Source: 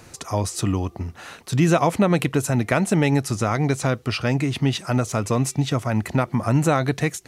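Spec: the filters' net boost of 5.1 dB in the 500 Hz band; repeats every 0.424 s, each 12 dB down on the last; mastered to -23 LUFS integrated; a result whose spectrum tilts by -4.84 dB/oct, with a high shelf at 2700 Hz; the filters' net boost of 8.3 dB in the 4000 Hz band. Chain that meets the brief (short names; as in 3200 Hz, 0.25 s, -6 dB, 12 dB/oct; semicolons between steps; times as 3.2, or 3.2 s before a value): bell 500 Hz +6 dB; high shelf 2700 Hz +4.5 dB; bell 4000 Hz +6.5 dB; feedback echo 0.424 s, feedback 25%, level -12 dB; gain -4 dB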